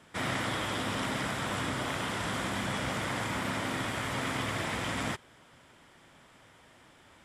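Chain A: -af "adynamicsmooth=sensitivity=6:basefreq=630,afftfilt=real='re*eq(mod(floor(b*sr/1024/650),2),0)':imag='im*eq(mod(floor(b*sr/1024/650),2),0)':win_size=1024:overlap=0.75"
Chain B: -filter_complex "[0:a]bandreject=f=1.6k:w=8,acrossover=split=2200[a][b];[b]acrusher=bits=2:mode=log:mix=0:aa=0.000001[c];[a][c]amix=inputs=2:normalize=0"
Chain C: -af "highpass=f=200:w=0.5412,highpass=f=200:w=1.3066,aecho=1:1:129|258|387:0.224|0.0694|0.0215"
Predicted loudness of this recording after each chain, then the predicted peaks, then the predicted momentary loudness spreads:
-36.0, -33.0, -33.0 LUFS; -22.0, -19.5, -19.0 dBFS; 1, 1, 1 LU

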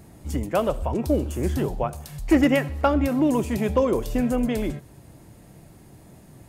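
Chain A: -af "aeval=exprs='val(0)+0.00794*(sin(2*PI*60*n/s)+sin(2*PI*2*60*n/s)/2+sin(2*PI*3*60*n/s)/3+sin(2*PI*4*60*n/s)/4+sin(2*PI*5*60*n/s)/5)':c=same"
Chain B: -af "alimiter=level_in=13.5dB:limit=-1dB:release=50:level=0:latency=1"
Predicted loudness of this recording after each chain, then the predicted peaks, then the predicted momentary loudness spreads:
-23.5, -12.0 LUFS; -9.0, -1.0 dBFS; 10, 8 LU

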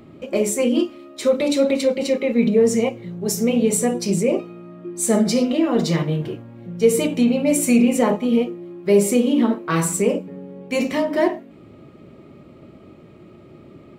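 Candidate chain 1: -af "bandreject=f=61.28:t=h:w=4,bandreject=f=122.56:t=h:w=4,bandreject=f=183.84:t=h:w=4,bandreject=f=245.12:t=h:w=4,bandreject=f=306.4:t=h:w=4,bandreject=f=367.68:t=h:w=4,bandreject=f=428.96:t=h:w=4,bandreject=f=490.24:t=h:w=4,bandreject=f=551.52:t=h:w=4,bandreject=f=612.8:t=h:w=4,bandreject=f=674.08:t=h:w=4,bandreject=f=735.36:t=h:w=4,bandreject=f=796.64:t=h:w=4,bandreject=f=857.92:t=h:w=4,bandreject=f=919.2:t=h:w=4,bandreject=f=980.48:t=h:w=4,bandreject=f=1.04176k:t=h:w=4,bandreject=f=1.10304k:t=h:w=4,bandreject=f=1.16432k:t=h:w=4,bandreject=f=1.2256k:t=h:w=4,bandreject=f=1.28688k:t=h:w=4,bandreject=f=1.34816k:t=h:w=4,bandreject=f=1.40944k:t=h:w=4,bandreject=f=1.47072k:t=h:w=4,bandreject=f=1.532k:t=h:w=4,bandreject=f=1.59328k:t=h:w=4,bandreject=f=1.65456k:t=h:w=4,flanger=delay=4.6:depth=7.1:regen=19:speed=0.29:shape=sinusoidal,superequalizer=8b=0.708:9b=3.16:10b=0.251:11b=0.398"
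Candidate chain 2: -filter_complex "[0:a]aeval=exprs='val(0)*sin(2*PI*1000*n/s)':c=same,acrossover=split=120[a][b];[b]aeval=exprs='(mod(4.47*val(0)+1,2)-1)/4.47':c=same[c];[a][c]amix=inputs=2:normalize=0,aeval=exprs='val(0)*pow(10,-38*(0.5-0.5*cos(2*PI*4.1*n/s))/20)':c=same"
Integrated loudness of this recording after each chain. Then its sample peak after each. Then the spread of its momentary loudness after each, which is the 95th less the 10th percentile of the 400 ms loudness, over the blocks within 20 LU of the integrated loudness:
-23.5, -28.5 LUFS; -5.5, -12.5 dBFS; 12, 16 LU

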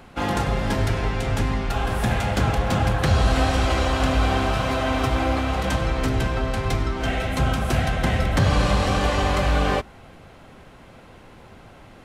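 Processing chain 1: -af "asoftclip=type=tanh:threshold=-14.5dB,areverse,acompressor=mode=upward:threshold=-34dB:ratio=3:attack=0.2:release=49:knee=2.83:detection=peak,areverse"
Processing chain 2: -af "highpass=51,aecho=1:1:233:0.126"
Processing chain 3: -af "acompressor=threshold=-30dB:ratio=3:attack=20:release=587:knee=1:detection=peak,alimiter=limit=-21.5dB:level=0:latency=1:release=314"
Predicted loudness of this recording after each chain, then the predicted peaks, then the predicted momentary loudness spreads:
-24.0, -23.0, -33.0 LUFS; -14.5, -7.5, -21.5 dBFS; 21, 5, 15 LU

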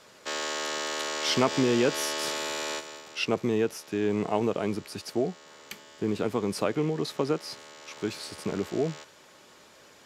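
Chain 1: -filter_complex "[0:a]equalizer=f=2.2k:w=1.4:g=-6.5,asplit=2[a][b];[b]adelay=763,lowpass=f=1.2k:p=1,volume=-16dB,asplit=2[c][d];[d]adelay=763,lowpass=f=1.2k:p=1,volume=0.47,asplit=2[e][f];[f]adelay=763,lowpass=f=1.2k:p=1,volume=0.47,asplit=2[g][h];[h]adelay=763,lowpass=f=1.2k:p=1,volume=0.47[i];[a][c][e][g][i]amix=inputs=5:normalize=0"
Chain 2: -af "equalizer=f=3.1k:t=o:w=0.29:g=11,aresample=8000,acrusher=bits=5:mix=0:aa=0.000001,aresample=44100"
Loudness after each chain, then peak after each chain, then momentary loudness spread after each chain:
-30.0, -28.0 LUFS; -10.0, -7.5 dBFS; 18, 13 LU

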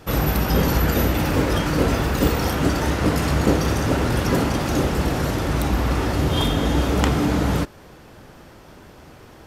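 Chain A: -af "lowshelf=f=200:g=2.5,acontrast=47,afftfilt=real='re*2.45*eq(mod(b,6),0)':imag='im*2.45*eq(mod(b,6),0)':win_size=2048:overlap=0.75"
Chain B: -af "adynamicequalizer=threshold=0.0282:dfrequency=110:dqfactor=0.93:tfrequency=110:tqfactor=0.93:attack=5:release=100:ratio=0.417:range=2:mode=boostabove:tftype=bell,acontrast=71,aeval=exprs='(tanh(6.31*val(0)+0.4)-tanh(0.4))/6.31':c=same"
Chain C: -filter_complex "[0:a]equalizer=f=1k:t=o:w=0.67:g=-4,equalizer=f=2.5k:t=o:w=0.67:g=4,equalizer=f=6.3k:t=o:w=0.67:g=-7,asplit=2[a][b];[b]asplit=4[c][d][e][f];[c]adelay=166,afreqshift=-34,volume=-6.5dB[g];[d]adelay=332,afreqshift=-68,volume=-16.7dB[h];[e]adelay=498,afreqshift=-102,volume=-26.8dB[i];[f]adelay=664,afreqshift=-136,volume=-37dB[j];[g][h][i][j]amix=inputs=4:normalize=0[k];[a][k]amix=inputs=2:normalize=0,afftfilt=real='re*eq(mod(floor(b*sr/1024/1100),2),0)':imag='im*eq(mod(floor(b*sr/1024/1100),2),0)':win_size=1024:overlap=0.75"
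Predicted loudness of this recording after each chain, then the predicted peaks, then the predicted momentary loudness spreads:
-18.5, -20.0, -21.0 LUFS; -3.0, -13.0, -4.5 dBFS; 3, 20, 3 LU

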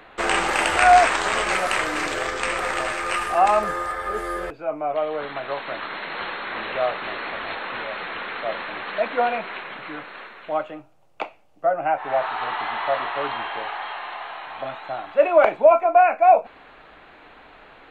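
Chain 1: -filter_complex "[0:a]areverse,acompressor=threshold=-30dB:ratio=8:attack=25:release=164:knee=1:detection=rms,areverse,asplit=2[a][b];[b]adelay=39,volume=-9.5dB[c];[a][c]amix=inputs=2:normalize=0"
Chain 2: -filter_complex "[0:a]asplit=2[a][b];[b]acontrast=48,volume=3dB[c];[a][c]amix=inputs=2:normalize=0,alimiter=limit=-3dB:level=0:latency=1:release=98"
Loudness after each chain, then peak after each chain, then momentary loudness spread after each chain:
-32.0, -14.5 LUFS; -16.5, -3.0 dBFS; 8, 11 LU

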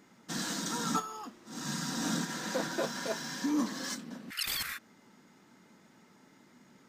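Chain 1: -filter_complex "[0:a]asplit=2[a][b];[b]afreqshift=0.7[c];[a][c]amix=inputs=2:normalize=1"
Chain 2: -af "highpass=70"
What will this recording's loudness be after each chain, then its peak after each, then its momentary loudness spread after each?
-37.0, -35.0 LUFS; -19.0, -18.0 dBFS; 10, 9 LU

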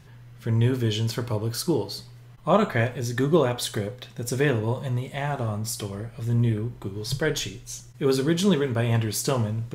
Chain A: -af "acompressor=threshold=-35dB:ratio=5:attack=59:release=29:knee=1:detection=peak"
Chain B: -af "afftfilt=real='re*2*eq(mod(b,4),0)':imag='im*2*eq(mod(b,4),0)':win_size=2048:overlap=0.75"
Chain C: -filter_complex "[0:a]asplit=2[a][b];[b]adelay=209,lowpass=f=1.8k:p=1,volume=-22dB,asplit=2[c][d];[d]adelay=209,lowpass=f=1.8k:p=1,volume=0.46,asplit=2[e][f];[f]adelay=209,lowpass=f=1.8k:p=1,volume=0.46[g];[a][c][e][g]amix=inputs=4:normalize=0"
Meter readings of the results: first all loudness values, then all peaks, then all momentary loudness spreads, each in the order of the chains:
-31.5, -29.0, -25.5 LUFS; -16.0, -10.0, -8.0 dBFS; 5, 15, 12 LU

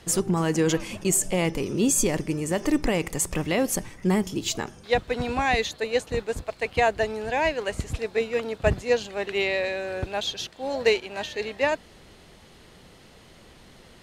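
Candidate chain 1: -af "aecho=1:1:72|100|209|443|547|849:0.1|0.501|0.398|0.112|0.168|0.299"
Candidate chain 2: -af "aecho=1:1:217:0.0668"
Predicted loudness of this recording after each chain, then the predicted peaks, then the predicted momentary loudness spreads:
-24.0, -26.0 LUFS; -7.5, -8.0 dBFS; 7, 8 LU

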